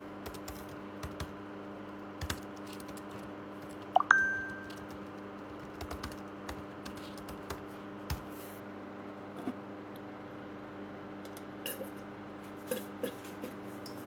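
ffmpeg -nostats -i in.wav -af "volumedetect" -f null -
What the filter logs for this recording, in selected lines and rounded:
mean_volume: -39.7 dB
max_volume: -4.1 dB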